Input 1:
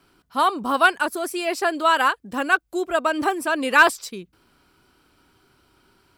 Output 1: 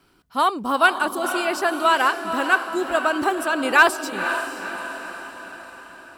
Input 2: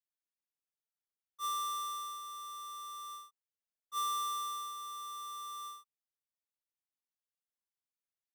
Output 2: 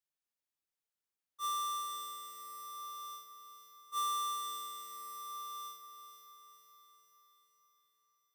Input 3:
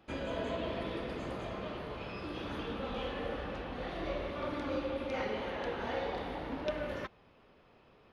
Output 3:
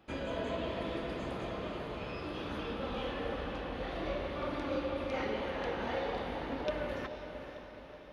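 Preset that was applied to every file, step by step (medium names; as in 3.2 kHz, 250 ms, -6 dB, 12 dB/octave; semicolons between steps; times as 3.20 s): echo that smears into a reverb 507 ms, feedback 54%, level -8.5 dB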